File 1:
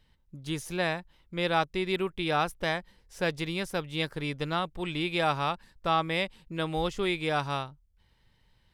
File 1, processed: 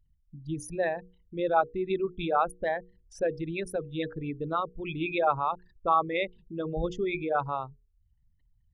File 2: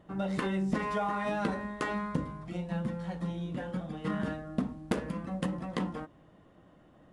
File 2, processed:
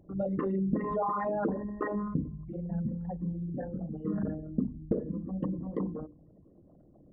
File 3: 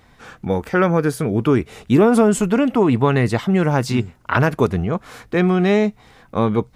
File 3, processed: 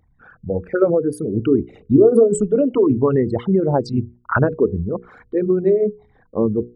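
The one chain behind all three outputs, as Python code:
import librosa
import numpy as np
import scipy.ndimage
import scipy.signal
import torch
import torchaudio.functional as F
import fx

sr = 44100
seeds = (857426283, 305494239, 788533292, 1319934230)

y = fx.envelope_sharpen(x, sr, power=3.0)
y = fx.hum_notches(y, sr, base_hz=60, count=8)
y = fx.upward_expand(y, sr, threshold_db=-30.0, expansion=1.5)
y = y * librosa.db_to_amplitude(3.0)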